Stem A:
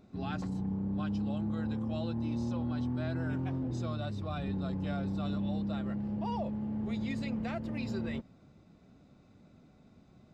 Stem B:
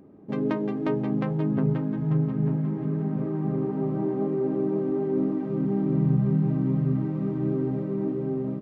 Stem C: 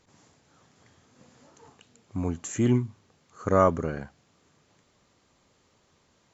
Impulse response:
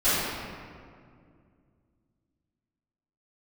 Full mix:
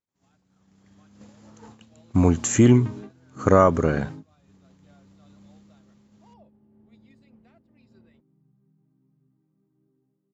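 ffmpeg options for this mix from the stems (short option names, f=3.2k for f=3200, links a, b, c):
-filter_complex "[0:a]volume=-16dB[a];[1:a]equalizer=f=570:t=o:w=0.24:g=-12.5,adelay=2350,volume=-19.5dB[b];[2:a]volume=2.5dB,asplit=2[c][d];[d]apad=whole_len=483345[e];[b][e]sidechaingate=range=-34dB:threshold=-52dB:ratio=16:detection=peak[f];[a][c]amix=inputs=2:normalize=0,agate=range=-33dB:threshold=-39dB:ratio=3:detection=peak,acompressor=threshold=-19dB:ratio=3,volume=0dB[g];[f][g]amix=inputs=2:normalize=0,dynaudnorm=f=220:g=9:m=11dB"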